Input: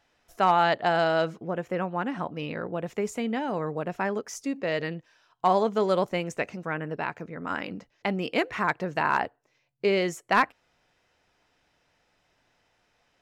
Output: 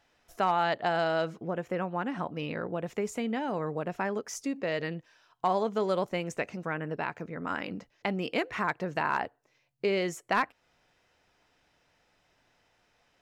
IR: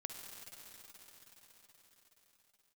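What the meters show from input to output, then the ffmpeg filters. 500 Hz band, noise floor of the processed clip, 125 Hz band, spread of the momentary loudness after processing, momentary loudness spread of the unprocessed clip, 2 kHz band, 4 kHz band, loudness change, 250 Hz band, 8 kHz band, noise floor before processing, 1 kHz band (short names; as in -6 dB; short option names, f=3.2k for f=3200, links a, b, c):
-4.0 dB, -71 dBFS, -3.0 dB, 7 LU, 10 LU, -4.0 dB, -4.0 dB, -4.0 dB, -3.0 dB, -1.0 dB, -71 dBFS, -4.5 dB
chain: -af "acompressor=threshold=-32dB:ratio=1.5"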